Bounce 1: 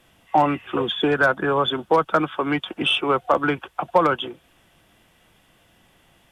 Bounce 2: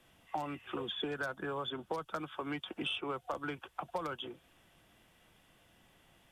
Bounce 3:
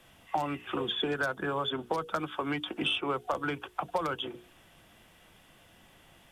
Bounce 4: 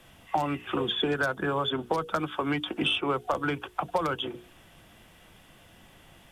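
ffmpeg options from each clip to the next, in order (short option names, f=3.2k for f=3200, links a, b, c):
-filter_complex "[0:a]acrossover=split=110|4100[a][b][c];[a]acompressor=threshold=-51dB:ratio=4[d];[b]acompressor=threshold=-30dB:ratio=4[e];[c]acompressor=threshold=-41dB:ratio=4[f];[d][e][f]amix=inputs=3:normalize=0,volume=-7.5dB"
-af "bandreject=f=60:t=h:w=6,bandreject=f=120:t=h:w=6,bandreject=f=180:t=h:w=6,bandreject=f=240:t=h:w=6,bandreject=f=300:t=h:w=6,bandreject=f=360:t=h:w=6,bandreject=f=420:t=h:w=6,bandreject=f=480:t=h:w=6,volume=7dB"
-af "lowshelf=f=240:g=3.5,volume=3dB"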